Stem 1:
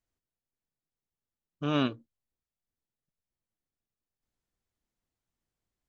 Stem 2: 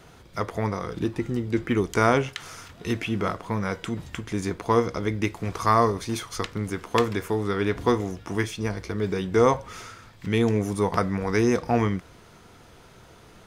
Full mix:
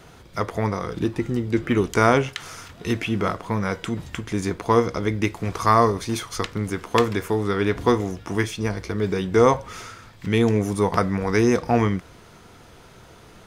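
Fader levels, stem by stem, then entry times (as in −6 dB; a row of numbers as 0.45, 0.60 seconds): −13.0, +3.0 decibels; 0.00, 0.00 seconds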